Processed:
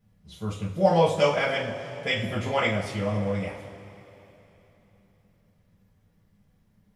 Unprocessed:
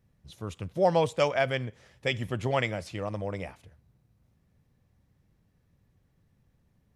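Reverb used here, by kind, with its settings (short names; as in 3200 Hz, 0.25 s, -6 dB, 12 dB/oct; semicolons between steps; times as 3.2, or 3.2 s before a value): two-slope reverb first 0.34 s, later 3.5 s, from -18 dB, DRR -6.5 dB; gain -3.5 dB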